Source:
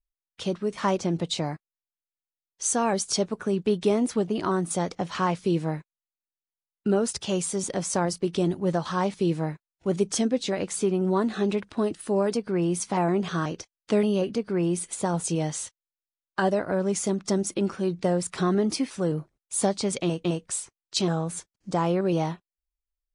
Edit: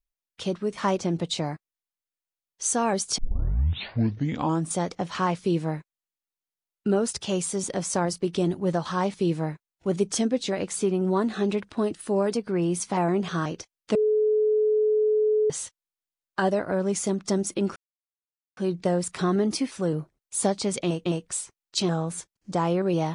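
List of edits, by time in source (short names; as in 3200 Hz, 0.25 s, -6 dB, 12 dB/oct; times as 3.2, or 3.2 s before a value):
3.18 tape start 1.57 s
13.95–15.5 bleep 428 Hz -18.5 dBFS
17.76 insert silence 0.81 s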